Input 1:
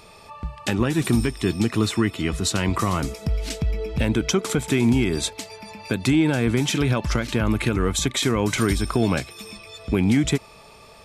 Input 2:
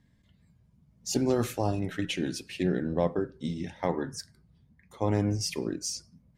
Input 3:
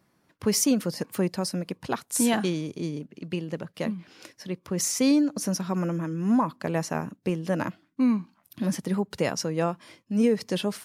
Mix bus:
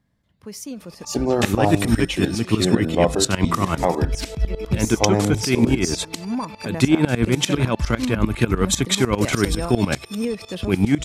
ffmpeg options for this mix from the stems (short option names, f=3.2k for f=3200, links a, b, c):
-filter_complex "[0:a]aeval=exprs='val(0)*pow(10,-19*if(lt(mod(-10*n/s,1),2*abs(-10)/1000),1-mod(-10*n/s,1)/(2*abs(-10)/1000),(mod(-10*n/s,1)-2*abs(-10)/1000)/(1-2*abs(-10)/1000))/20)':c=same,adelay=750,volume=-2dB[a];[1:a]equalizer=f=740:t=o:w=1.1:g=6.5,volume=-4dB,asplit=2[b][c];[2:a]volume=-13dB[d];[c]apad=whole_len=478318[e];[d][e]sidechaincompress=threshold=-50dB:ratio=8:attack=16:release=308[f];[a][b][f]amix=inputs=3:normalize=0,dynaudnorm=f=240:g=9:m=12dB"